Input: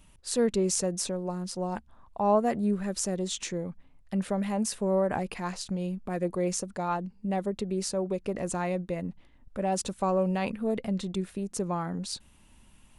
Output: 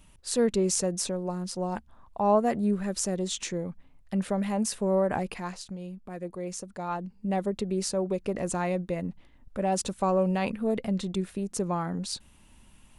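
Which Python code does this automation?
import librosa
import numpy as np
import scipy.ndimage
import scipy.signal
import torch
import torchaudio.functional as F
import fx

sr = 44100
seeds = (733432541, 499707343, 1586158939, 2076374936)

y = fx.gain(x, sr, db=fx.line((5.28, 1.0), (5.77, -7.0), (6.45, -7.0), (7.33, 1.5)))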